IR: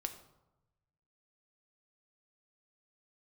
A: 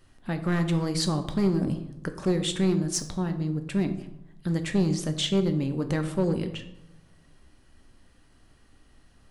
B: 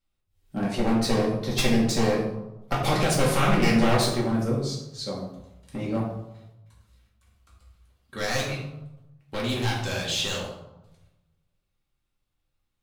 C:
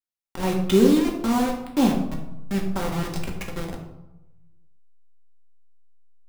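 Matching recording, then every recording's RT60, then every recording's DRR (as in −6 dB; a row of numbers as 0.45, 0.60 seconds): A; 1.0, 0.95, 0.95 seconds; 6.5, −5.0, 0.0 decibels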